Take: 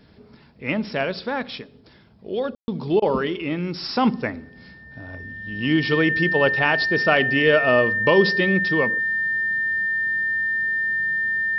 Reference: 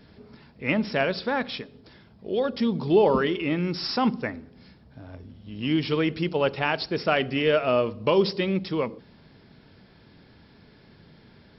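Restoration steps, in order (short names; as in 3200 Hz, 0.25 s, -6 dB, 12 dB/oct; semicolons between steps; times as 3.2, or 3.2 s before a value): notch 1800 Hz, Q 30; room tone fill 2.55–2.68; interpolate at 3, 19 ms; gain 0 dB, from 3.96 s -4 dB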